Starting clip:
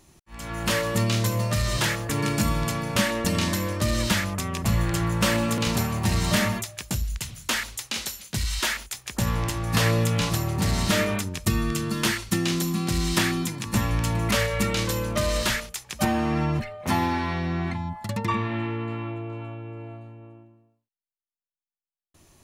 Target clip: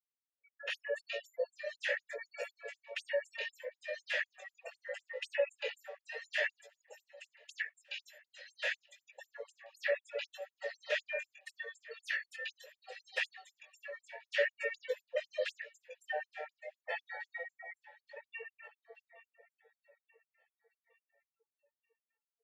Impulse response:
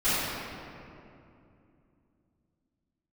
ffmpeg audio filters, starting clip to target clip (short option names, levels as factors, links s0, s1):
-filter_complex "[0:a]asplit=2[s0][s1];[s1]aecho=0:1:12|64:0.316|0.355[s2];[s0][s2]amix=inputs=2:normalize=0,afftfilt=real='re*gte(hypot(re,im),0.0562)':imag='im*gte(hypot(re,im),0.0562)':win_size=1024:overlap=0.75,highpass=f=92:p=1,adynamicequalizer=threshold=0.0126:dfrequency=250:dqfactor=1.4:tfrequency=250:tqfactor=1.4:attack=5:release=100:ratio=0.375:range=1.5:mode=boostabove:tftype=bell,asplit=2[s3][s4];[s4]aecho=0:1:874|1748|2622|3496:0.0944|0.0472|0.0236|0.0118[s5];[s3][s5]amix=inputs=2:normalize=0,flanger=delay=17:depth=4.2:speed=0.76,asplit=3[s6][s7][s8];[s6]bandpass=f=530:t=q:w=8,volume=1[s9];[s7]bandpass=f=1840:t=q:w=8,volume=0.501[s10];[s8]bandpass=f=2480:t=q:w=8,volume=0.355[s11];[s9][s10][s11]amix=inputs=3:normalize=0,afftfilt=real='re*gte(b*sr/1024,420*pow(7000/420,0.5+0.5*sin(2*PI*4*pts/sr)))':imag='im*gte(b*sr/1024,420*pow(7000/420,0.5+0.5*sin(2*PI*4*pts/sr)))':win_size=1024:overlap=0.75,volume=2.24"